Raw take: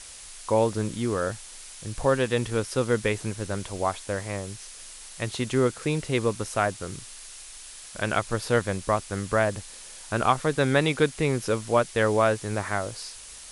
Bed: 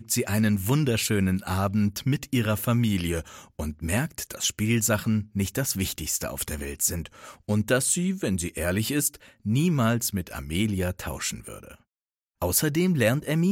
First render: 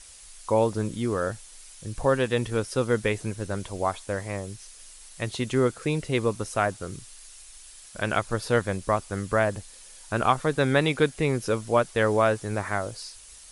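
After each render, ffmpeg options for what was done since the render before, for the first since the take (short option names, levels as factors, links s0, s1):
-af "afftdn=nr=7:nf=-44"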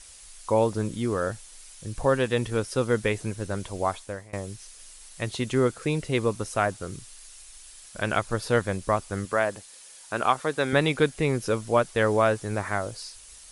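-filter_complex "[0:a]asettb=1/sr,asplit=3[s0][s1][s2];[s0]atrim=end=9.254[s3];[s1]atrim=start=9.25:end=10.73,asetpts=PTS-STARTPTS,afade=t=in:d=0.004:c=qsin,afade=t=out:st=1.476:d=0.004:c=qsin,highpass=f=360:p=1[s4];[s2]atrim=start=10.726[s5];[s3][s4]acrossfade=d=0.004:c1=hsin:c2=qsin[s6];[s6][s5]acrossfade=d=0.004:c1=qsin:c2=hsin,asplit=2[s7][s8];[s7]atrim=end=4.33,asetpts=PTS-STARTPTS,afade=t=out:st=3.93:d=0.4:silence=0.0749894[s9];[s8]atrim=start=4.33,asetpts=PTS-STARTPTS,afade=t=in:d=0.004:c=hsin:silence=0.0749894[s10];[s9][s10]concat=n=2:v=0:a=1"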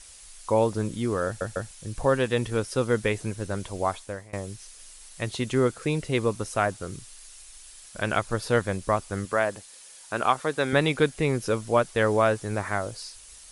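-filter_complex "[0:a]asplit=4[s0][s1][s2][s3];[s0]atrim=end=1.412[s4];[s1]atrim=start=1.258:end=1.412[s5];[s2]atrim=start=1.258:end=1.412[s6];[s3]atrim=start=1.708[s7];[s4][s5]acrossfade=d=0.004:c1=hsin:c2=hsin[s8];[s8][s6]acrossfade=d=0.004:c1=hsin:c2=hsin[s9];[s9][s7]acrossfade=d=0.004:c1=hsin:c2=hsin"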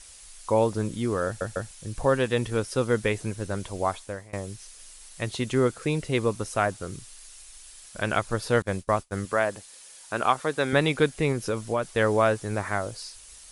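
-filter_complex "[0:a]asettb=1/sr,asplit=3[s0][s1][s2];[s0]atrim=end=8.624[s3];[s1]atrim=start=8.62:end=9.18,asetpts=PTS-STARTPTS,afade=t=in:d=0.004:c=qsin,afade=t=out:st=0.556:d=0.004:c=qsin,agate=range=0.0224:threshold=0.0251:ratio=3:release=100:detection=peak[s4];[s2]atrim=start=9.176[s5];[s3][s4]acrossfade=d=0.004:c1=hsin:c2=qsin[s6];[s6][s5]acrossfade=d=0.004:c1=qsin:c2=hsin,asettb=1/sr,asplit=3[s7][s8][s9];[s7]atrim=end=11.324[s10];[s8]atrim=start=11.32:end=11.83,asetpts=PTS-STARTPTS,afade=t=in:d=0.004:c=qsin,afade=t=out:st=0.506:d=0.004:c=qsin,acompressor=threshold=0.0794:ratio=3:attack=3.2:release=140:knee=1:detection=peak[s11];[s9]atrim=start=11.826[s12];[s10][s11]acrossfade=d=0.004:c1=hsin:c2=qsin[s13];[s13][s12]acrossfade=d=0.004:c1=qsin:c2=hsin"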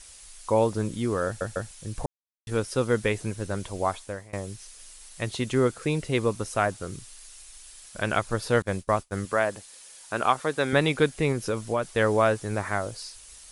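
-filter_complex "[0:a]asplit=3[s0][s1][s2];[s0]atrim=end=2.06,asetpts=PTS-STARTPTS,afade=t=out:st=2.056:d=0.004:c=hsin[s3];[s1]atrim=start=2.06:end=2.47,asetpts=PTS-STARTPTS,volume=0[s4];[s2]atrim=start=2.47,asetpts=PTS-STARTPTS,afade=t=in:d=0.004:c=hsin[s5];[s3][s4][s5]concat=n=3:v=0:a=1"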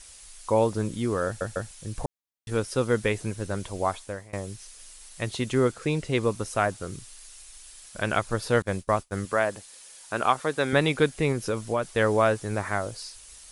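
-filter_complex "[0:a]asettb=1/sr,asplit=3[s0][s1][s2];[s0]atrim=end=5.724[s3];[s1]atrim=start=5.72:end=6.23,asetpts=PTS-STARTPTS,afade=t=in:d=0.004:c=qsin,afade=t=out:st=0.506:d=0.004:c=qsin,lowpass=9300[s4];[s2]atrim=start=6.226[s5];[s3][s4]acrossfade=d=0.004:c1=hsin:c2=qsin[s6];[s6][s5]acrossfade=d=0.004:c1=qsin:c2=hsin"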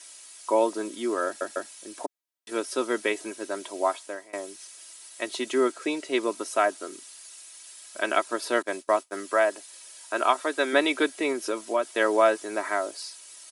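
-af "highpass=f=300:w=0.5412,highpass=f=300:w=1.3066,aecho=1:1:3.1:0.64"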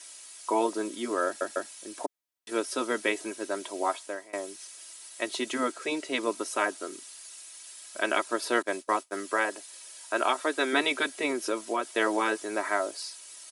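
-af "afftfilt=real='re*lt(hypot(re,im),0.501)':imag='im*lt(hypot(re,im),0.501)':win_size=1024:overlap=0.75"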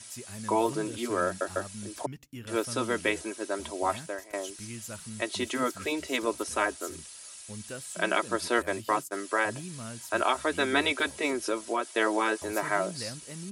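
-filter_complex "[1:a]volume=0.119[s0];[0:a][s0]amix=inputs=2:normalize=0"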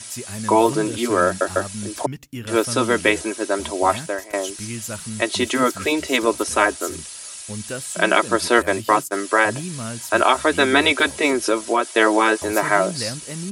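-af "volume=3.35,alimiter=limit=0.891:level=0:latency=1"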